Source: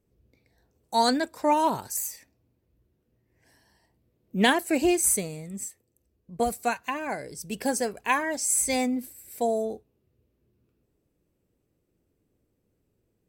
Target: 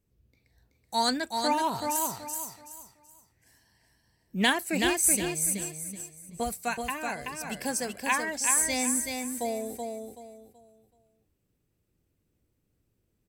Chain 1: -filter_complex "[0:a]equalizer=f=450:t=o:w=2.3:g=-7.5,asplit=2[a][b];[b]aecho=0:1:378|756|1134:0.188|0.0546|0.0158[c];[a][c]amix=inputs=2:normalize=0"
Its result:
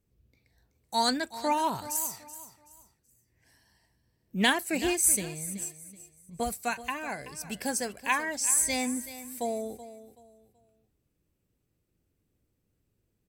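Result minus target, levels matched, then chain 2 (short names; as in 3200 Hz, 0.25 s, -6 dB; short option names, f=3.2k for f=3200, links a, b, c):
echo-to-direct -10 dB
-filter_complex "[0:a]equalizer=f=450:t=o:w=2.3:g=-7.5,asplit=2[a][b];[b]aecho=0:1:378|756|1134|1512:0.596|0.173|0.0501|0.0145[c];[a][c]amix=inputs=2:normalize=0"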